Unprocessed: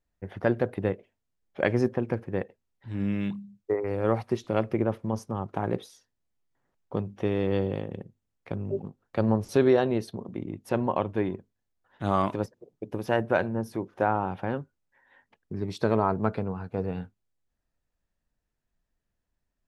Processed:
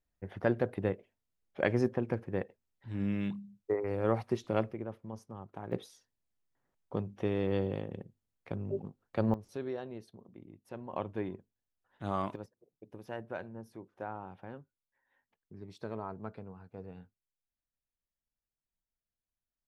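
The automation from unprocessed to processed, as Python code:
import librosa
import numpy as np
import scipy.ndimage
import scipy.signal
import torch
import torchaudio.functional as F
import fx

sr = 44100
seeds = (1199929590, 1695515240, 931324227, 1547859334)

y = fx.gain(x, sr, db=fx.steps((0.0, -4.5), (4.71, -14.0), (5.72, -5.0), (9.34, -17.5), (10.93, -9.0), (12.36, -16.0)))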